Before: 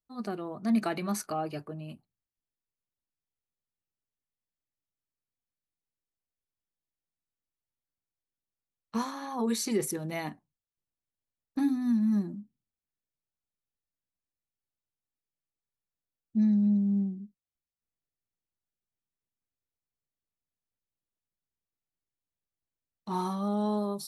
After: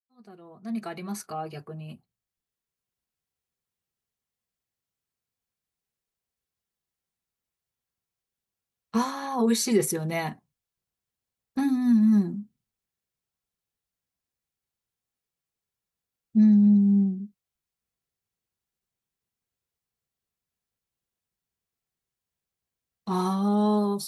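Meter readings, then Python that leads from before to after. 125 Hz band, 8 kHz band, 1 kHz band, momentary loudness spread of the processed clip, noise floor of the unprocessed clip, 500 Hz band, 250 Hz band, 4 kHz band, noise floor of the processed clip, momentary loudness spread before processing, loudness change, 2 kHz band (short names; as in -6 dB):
+6.5 dB, +5.0 dB, +4.0 dB, 19 LU, under -85 dBFS, +5.0 dB, +6.0 dB, +5.0 dB, under -85 dBFS, 15 LU, +6.5 dB, +4.0 dB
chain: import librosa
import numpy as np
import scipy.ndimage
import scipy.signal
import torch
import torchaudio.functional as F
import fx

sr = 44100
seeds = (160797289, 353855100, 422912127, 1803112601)

y = fx.fade_in_head(x, sr, length_s=3.04)
y = fx.notch_comb(y, sr, f0_hz=300.0)
y = F.gain(torch.from_numpy(y), 7.0).numpy()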